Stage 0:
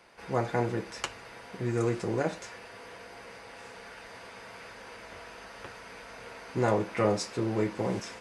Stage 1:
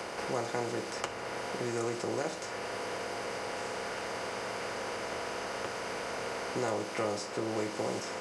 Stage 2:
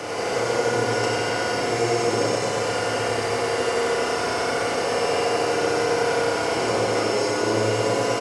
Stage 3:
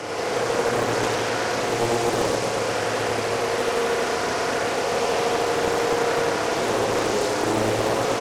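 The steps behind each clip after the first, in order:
compressor on every frequency bin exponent 0.6; bass and treble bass −7 dB, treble +4 dB; multiband upward and downward compressor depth 70%; level −5.5 dB
compressor on every frequency bin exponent 0.6; single-tap delay 92 ms −4.5 dB; feedback delay network reverb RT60 3.4 s, high-frequency decay 0.9×, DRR −6.5 dB
highs frequency-modulated by the lows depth 0.69 ms

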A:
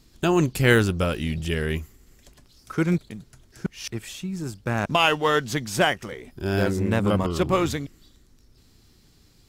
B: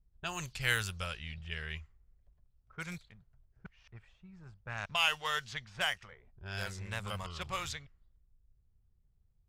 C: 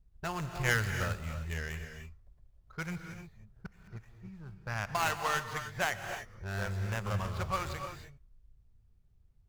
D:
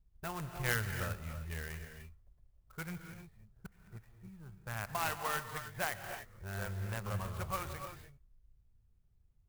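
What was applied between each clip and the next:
low-pass that shuts in the quiet parts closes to 410 Hz, open at −17 dBFS; guitar amp tone stack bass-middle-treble 10-0-10; level −4 dB
running median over 15 samples; reverb whose tail is shaped and stops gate 330 ms rising, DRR 7 dB; level +5.5 dB
converter with an unsteady clock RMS 0.043 ms; level −4.5 dB

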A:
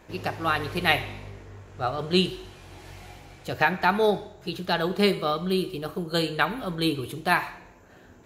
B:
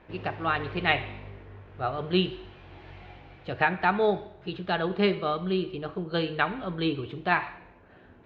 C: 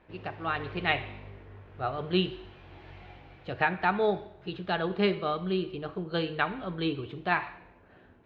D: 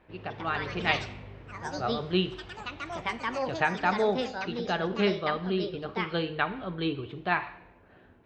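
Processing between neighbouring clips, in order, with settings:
low-pass filter 3,400 Hz 24 dB per octave; level −2 dB
automatic gain control gain up to 4 dB; level −6 dB
delay with pitch and tempo change per echo 192 ms, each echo +4 semitones, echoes 3, each echo −6 dB

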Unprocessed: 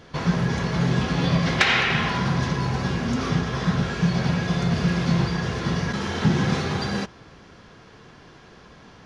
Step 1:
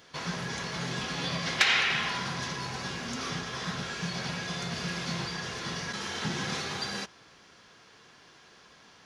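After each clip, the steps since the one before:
spectral tilt +3 dB per octave
level −7.5 dB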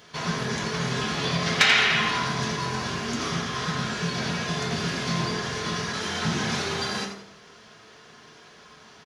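echo with shifted repeats 85 ms, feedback 33%, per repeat +84 Hz, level −9 dB
convolution reverb RT60 0.60 s, pre-delay 4 ms, DRR 2.5 dB
level +3.5 dB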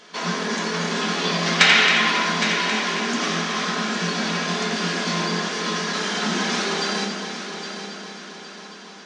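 echo machine with several playback heads 271 ms, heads first and third, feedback 59%, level −10.5 dB
brick-wall band-pass 170–9,300 Hz
level +4 dB

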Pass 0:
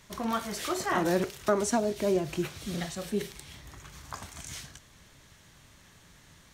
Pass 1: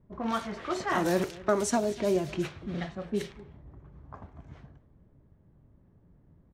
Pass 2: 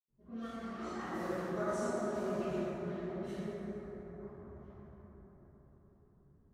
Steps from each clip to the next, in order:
single-tap delay 246 ms −20 dB; low-pass that shuts in the quiet parts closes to 370 Hz, open at −24 dBFS
rotating-speaker cabinet horn 1.2 Hz; convolution reverb RT60 5.2 s, pre-delay 76 ms; level +10 dB

